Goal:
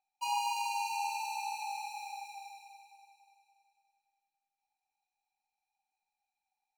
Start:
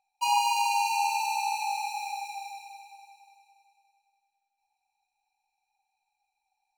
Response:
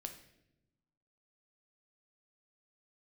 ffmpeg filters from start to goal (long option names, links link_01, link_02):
-filter_complex "[0:a]asplit=2[link_01][link_02];[1:a]atrim=start_sample=2205,adelay=111[link_03];[link_02][link_03]afir=irnorm=-1:irlink=0,volume=-13.5dB[link_04];[link_01][link_04]amix=inputs=2:normalize=0,volume=-8.5dB"